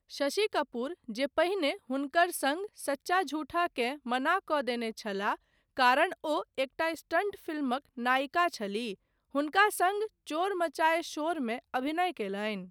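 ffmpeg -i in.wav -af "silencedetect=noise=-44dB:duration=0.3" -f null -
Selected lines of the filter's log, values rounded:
silence_start: 5.36
silence_end: 5.77 | silence_duration: 0.41
silence_start: 8.94
silence_end: 9.35 | silence_duration: 0.41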